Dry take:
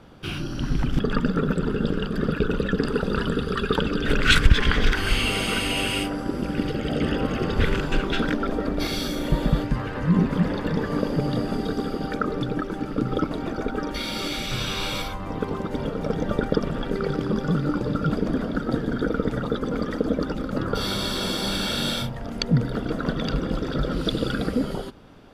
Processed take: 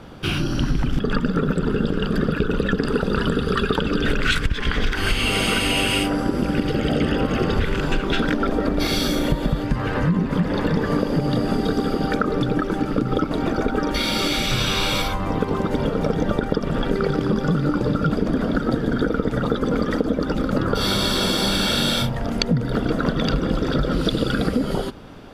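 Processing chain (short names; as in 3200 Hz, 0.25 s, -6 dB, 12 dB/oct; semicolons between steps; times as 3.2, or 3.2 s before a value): compressor 10:1, threshold -24 dBFS, peak gain reduction 17 dB; gain +8 dB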